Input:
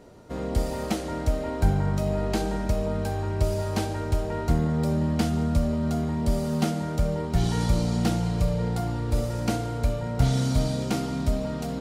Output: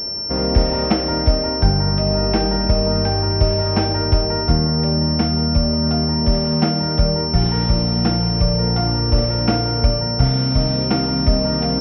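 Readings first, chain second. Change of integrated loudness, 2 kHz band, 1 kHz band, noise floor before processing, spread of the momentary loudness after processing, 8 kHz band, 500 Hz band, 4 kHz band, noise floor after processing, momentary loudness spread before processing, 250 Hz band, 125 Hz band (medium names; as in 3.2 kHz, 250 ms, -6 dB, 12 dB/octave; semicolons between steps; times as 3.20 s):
+9.0 dB, +7.0 dB, +8.0 dB, -32 dBFS, 1 LU, under -10 dB, +8.0 dB, +20.0 dB, -22 dBFS, 4 LU, +7.5 dB, +7.0 dB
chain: gain riding within 4 dB 0.5 s; class-D stage that switches slowly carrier 5.4 kHz; trim +7.5 dB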